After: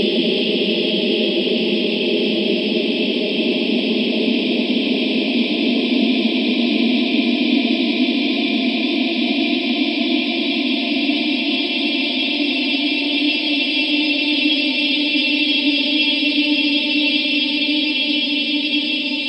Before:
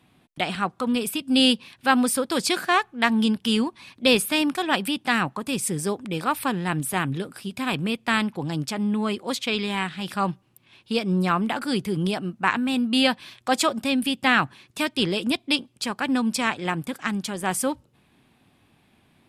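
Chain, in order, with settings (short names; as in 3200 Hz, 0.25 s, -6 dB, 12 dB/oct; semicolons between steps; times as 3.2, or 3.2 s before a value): envelope phaser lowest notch 570 Hz, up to 1400 Hz, full sweep at -22 dBFS; brick-wall FIR band-pass 190–8400 Hz; Paulstretch 36×, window 0.50 s, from 15.1; gain +8 dB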